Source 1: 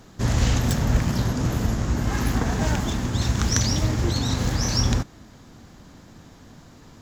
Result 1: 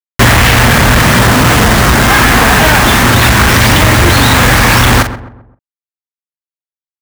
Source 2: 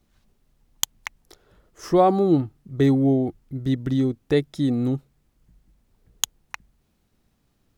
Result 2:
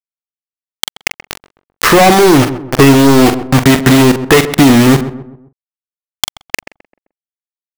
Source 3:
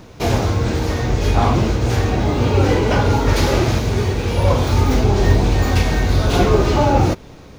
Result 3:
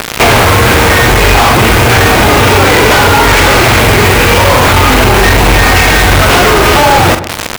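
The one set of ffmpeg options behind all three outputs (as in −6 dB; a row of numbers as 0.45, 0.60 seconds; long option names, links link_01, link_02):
-filter_complex "[0:a]lowpass=frequency=2600:width=0.5412,lowpass=frequency=2600:width=1.3066,tiltshelf=frequency=730:gain=-9,asplit=2[link_01][link_02];[link_02]acompressor=threshold=-30dB:ratio=6,volume=3dB[link_03];[link_01][link_03]amix=inputs=2:normalize=0,aeval=exprs='0.299*(abs(mod(val(0)/0.299+3,4)-2)-1)':channel_layout=same,acrusher=bits=4:mix=0:aa=0.000001,asoftclip=type=hard:threshold=-29dB,asplit=2[link_04][link_05];[link_05]adelay=43,volume=-12dB[link_06];[link_04][link_06]amix=inputs=2:normalize=0,asplit=2[link_07][link_08];[link_08]adelay=130,lowpass=frequency=1300:poles=1,volume=-17dB,asplit=2[link_09][link_10];[link_10]adelay=130,lowpass=frequency=1300:poles=1,volume=0.42,asplit=2[link_11][link_12];[link_12]adelay=130,lowpass=frequency=1300:poles=1,volume=0.42,asplit=2[link_13][link_14];[link_14]adelay=130,lowpass=frequency=1300:poles=1,volume=0.42[link_15];[link_07][link_09][link_11][link_13][link_15]amix=inputs=5:normalize=0,alimiter=level_in=30.5dB:limit=-1dB:release=50:level=0:latency=1,volume=-1dB"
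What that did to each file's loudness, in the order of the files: +17.0, +13.5, +11.5 LU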